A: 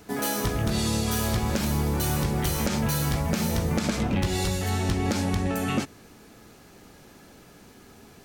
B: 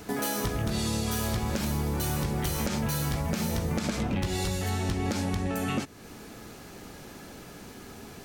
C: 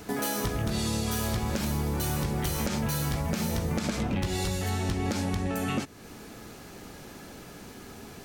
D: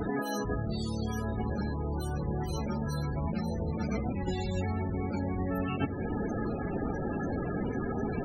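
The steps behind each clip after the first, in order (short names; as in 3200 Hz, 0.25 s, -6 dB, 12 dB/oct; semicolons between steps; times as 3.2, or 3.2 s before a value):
compressor 2:1, threshold -39 dBFS, peak gain reduction 10.5 dB; gain +5.5 dB
nothing audible
negative-ratio compressor -37 dBFS, ratio -1; diffused feedback echo 1.234 s, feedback 52%, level -9.5 dB; loudest bins only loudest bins 32; gain +6 dB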